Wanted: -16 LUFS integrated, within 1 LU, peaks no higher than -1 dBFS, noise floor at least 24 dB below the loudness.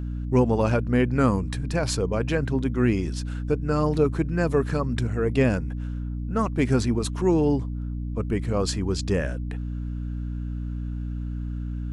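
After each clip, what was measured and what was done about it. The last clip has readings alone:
hum 60 Hz; highest harmonic 300 Hz; hum level -27 dBFS; loudness -25.5 LUFS; peak level -6.5 dBFS; loudness target -16.0 LUFS
-> hum notches 60/120/180/240/300 Hz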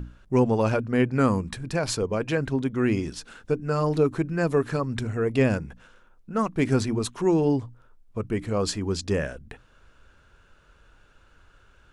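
hum not found; loudness -25.5 LUFS; peak level -8.0 dBFS; loudness target -16.0 LUFS
-> trim +9.5 dB; peak limiter -1 dBFS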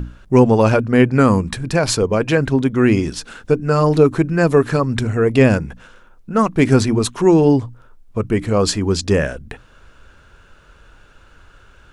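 loudness -16.0 LUFS; peak level -1.0 dBFS; noise floor -49 dBFS

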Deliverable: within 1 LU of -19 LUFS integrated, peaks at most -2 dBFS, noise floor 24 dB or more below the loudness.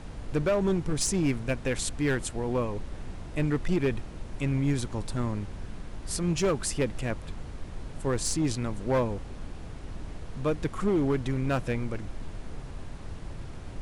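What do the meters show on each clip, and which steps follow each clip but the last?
clipped samples 1.6%; clipping level -20.0 dBFS; noise floor -41 dBFS; noise floor target -54 dBFS; loudness -29.5 LUFS; peak level -20.0 dBFS; loudness target -19.0 LUFS
-> clip repair -20 dBFS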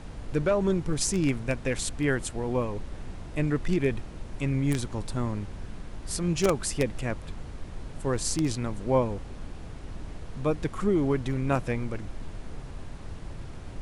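clipped samples 0.0%; noise floor -41 dBFS; noise floor target -53 dBFS
-> noise print and reduce 12 dB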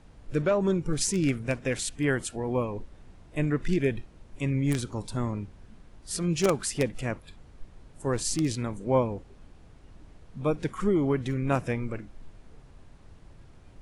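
noise floor -53 dBFS; loudness -29.0 LUFS; peak level -10.5 dBFS; loudness target -19.0 LUFS
-> trim +10 dB; peak limiter -2 dBFS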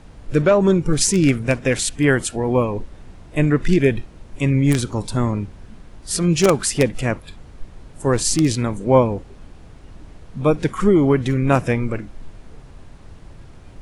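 loudness -19.0 LUFS; peak level -2.0 dBFS; noise floor -43 dBFS

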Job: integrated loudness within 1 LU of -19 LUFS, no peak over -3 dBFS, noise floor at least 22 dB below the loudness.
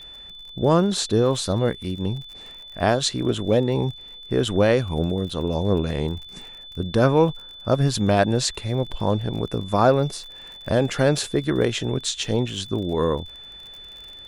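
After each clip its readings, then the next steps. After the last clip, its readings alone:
tick rate 40 per s; steady tone 3.5 kHz; tone level -39 dBFS; loudness -22.5 LUFS; peak level -4.5 dBFS; loudness target -19.0 LUFS
-> de-click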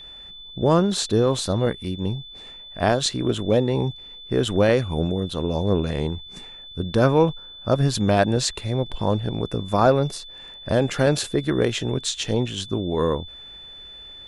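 tick rate 0 per s; steady tone 3.5 kHz; tone level -39 dBFS
-> band-stop 3.5 kHz, Q 30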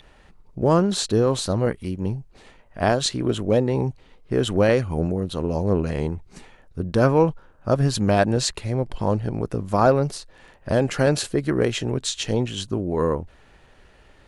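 steady tone not found; loudness -22.5 LUFS; peak level -4.5 dBFS; loudness target -19.0 LUFS
-> trim +3.5 dB; peak limiter -3 dBFS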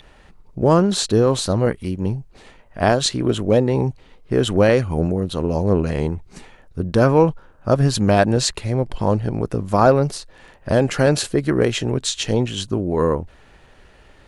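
loudness -19.0 LUFS; peak level -3.0 dBFS; noise floor -49 dBFS

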